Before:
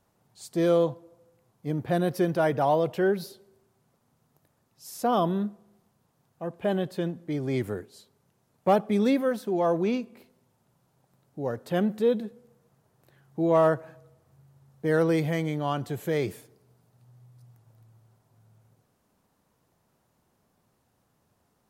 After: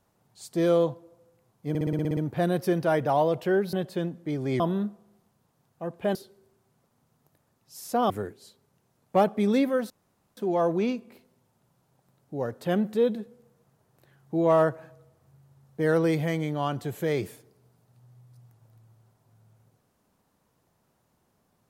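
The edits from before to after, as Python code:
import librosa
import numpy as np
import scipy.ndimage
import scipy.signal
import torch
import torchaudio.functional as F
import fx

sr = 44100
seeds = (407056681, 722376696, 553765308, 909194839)

y = fx.edit(x, sr, fx.stutter(start_s=1.69, slice_s=0.06, count=9),
    fx.swap(start_s=3.25, length_s=1.95, other_s=6.75, other_length_s=0.87),
    fx.insert_room_tone(at_s=9.42, length_s=0.47), tone=tone)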